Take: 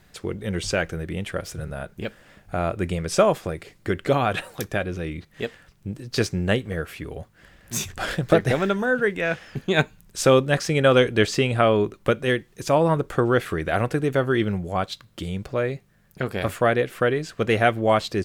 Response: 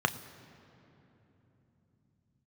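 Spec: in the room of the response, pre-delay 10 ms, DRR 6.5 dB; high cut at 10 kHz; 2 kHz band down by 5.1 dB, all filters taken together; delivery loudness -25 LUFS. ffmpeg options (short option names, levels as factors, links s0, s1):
-filter_complex "[0:a]lowpass=10000,equalizer=f=2000:t=o:g=-7,asplit=2[s0][s1];[1:a]atrim=start_sample=2205,adelay=10[s2];[s1][s2]afir=irnorm=-1:irlink=0,volume=0.141[s3];[s0][s3]amix=inputs=2:normalize=0,volume=0.841"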